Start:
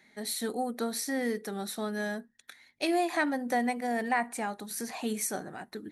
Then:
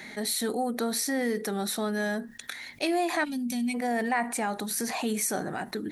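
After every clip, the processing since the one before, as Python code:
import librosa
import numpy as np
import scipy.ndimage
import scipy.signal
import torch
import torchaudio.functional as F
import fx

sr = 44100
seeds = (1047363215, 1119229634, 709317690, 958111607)

y = fx.spec_box(x, sr, start_s=3.25, length_s=0.5, low_hz=260.0, high_hz=2200.0, gain_db=-23)
y = fx.env_flatten(y, sr, amount_pct=50)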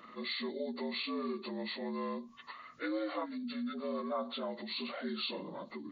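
y = fx.partial_stretch(x, sr, pct=75)
y = F.gain(torch.from_numpy(y), -8.5).numpy()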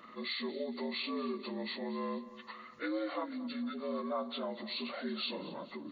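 y = fx.echo_feedback(x, sr, ms=229, feedback_pct=53, wet_db=-17)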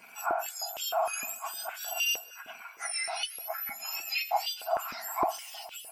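y = fx.octave_mirror(x, sr, pivot_hz=1700.0)
y = fx.filter_held_highpass(y, sr, hz=6.5, low_hz=240.0, high_hz=3000.0)
y = F.gain(torch.from_numpy(y), 5.5).numpy()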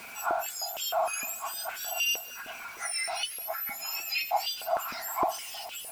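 y = x + 0.5 * 10.0 ** (-42.0 / 20.0) * np.sign(x)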